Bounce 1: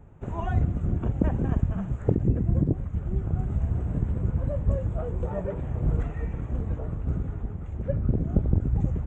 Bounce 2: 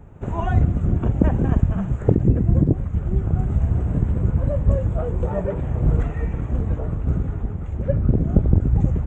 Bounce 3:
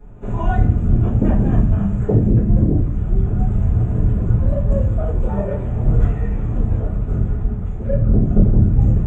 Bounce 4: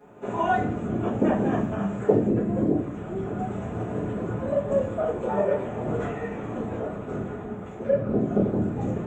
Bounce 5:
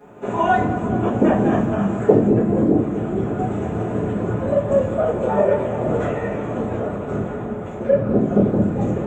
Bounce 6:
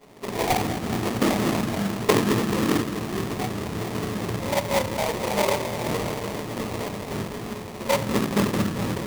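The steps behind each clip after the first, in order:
pre-echo 70 ms -21 dB; trim +6.5 dB
reverberation RT60 0.45 s, pre-delay 4 ms, DRR -8 dB; trim -8.5 dB
high-pass 340 Hz 12 dB/octave; trim +3 dB
bucket-brigade echo 216 ms, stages 2048, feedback 82%, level -13 dB; trim +6 dB
sample-rate reducer 1.5 kHz, jitter 20%; trim -6 dB

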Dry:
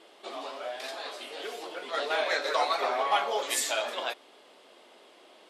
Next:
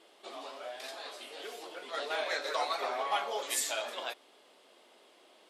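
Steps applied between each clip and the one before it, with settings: treble shelf 6.1 kHz +5.5 dB; trim -6 dB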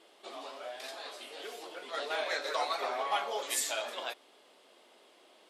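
no audible change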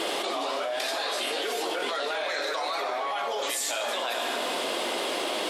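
peak limiter -30 dBFS, peak gain reduction 11 dB; on a send at -9 dB: reverberation RT60 1.8 s, pre-delay 5 ms; on the sum: level flattener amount 100%; trim +6.5 dB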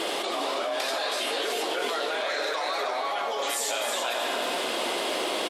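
delay 319 ms -6 dB

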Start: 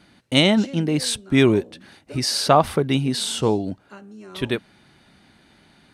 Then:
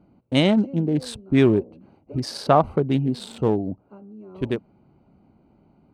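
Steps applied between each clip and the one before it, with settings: local Wiener filter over 25 samples; treble shelf 2.2 kHz -10 dB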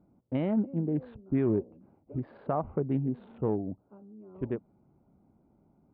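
peak limiter -11 dBFS, peak gain reduction 6.5 dB; Gaussian low-pass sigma 4.7 samples; trim -7.5 dB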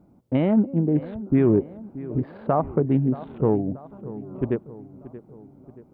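filtered feedback delay 629 ms, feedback 55%, low-pass 2 kHz, level -16 dB; trim +8.5 dB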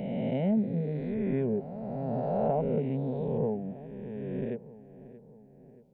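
reverse spectral sustain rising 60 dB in 2.68 s; static phaser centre 320 Hz, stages 6; trim -8.5 dB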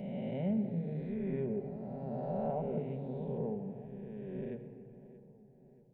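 simulated room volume 3400 m³, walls mixed, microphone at 1.1 m; trim -8.5 dB

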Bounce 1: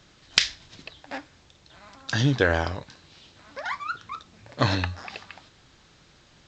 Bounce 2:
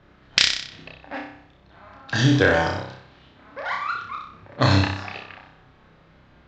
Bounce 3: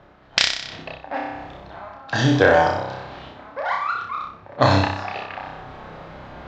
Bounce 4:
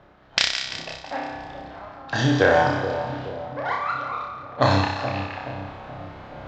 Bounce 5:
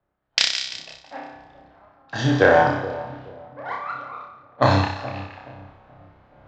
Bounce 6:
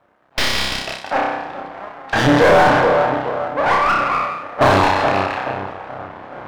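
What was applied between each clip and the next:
flutter echo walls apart 5.3 m, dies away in 0.64 s; level-controlled noise filter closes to 1.7 kHz, open at -18.5 dBFS; trim +1.5 dB
reverse; upward compressor, threshold -27 dBFS; reverse; peaking EQ 740 Hz +9.5 dB 1.4 oct; trim -1.5 dB
two-band feedback delay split 800 Hz, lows 426 ms, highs 171 ms, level -9 dB; trim -2.5 dB
three bands expanded up and down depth 70%; trim -3.5 dB
half-wave rectifier; overdrive pedal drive 36 dB, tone 1 kHz, clips at -1 dBFS

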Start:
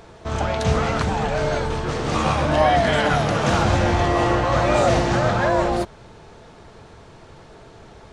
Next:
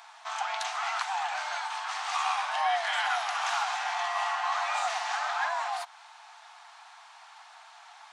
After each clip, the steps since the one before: compression 2:1, threshold -25 dBFS, peak gain reduction 7 dB; Chebyshev high-pass 740 Hz, order 6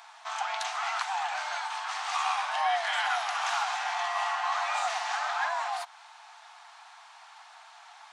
no audible change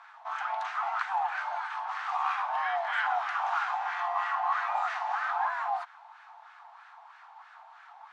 LFO band-pass sine 3.1 Hz 780–1600 Hz; trim +4 dB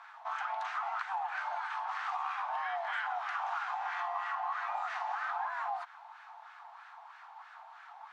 compression 5:1, threshold -33 dBFS, peak gain reduction 9 dB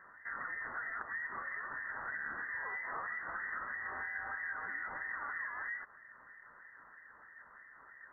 frequency inversion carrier 2.7 kHz; trim -5 dB

